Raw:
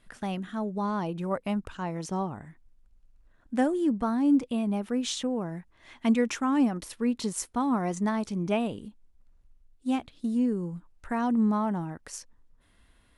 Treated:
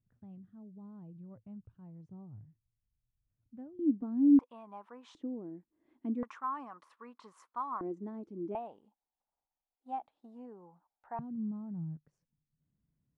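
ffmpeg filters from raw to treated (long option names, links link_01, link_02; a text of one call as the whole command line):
ffmpeg -i in.wav -af "asetnsamples=nb_out_samples=441:pad=0,asendcmd='3.79 bandpass f 280;4.39 bandpass f 1000;5.15 bandpass f 310;6.23 bandpass f 1100;7.81 bandpass f 330;8.55 bandpass f 810;11.19 bandpass f 150',bandpass=frequency=110:width_type=q:width=5.7:csg=0" out.wav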